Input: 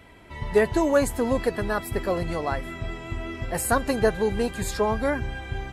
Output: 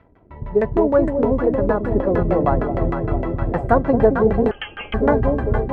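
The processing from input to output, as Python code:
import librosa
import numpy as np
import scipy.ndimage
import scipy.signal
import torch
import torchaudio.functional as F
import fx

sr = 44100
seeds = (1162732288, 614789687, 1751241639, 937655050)

p1 = np.sign(x) * np.maximum(np.abs(x) - 10.0 ** (-55.5 / 20.0), 0.0)
p2 = fx.rider(p1, sr, range_db=5, speed_s=2.0)
p3 = fx.quant_float(p2, sr, bits=2)
p4 = p3 + fx.echo_alternate(p3, sr, ms=223, hz=890.0, feedback_pct=81, wet_db=-3.5, dry=0)
p5 = fx.freq_invert(p4, sr, carrier_hz=3200, at=(4.51, 4.94))
p6 = fx.filter_lfo_lowpass(p5, sr, shape='saw_down', hz=6.5, low_hz=280.0, high_hz=1500.0, q=0.97)
y = F.gain(torch.from_numpy(p6), 5.5).numpy()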